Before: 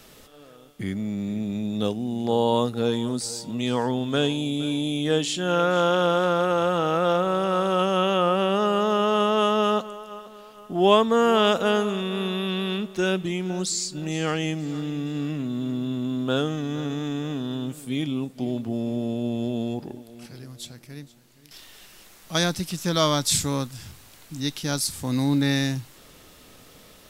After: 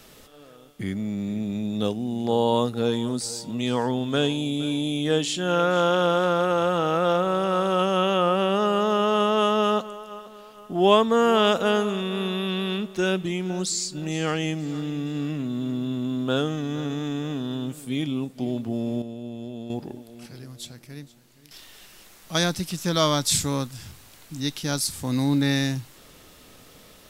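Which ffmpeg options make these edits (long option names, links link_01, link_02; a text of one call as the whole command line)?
ffmpeg -i in.wav -filter_complex "[0:a]asplit=3[link_01][link_02][link_03];[link_01]atrim=end=19.022[link_04];[link_02]atrim=start=19.018:end=19.702,asetpts=PTS-STARTPTS,volume=-8.5dB[link_05];[link_03]atrim=start=19.698[link_06];[link_04][link_05]acrossfade=duration=0.004:curve1=hsin:curve2=hsin[link_07];[link_07][link_06]acrossfade=duration=0.004:curve1=hsin:curve2=hsin" out.wav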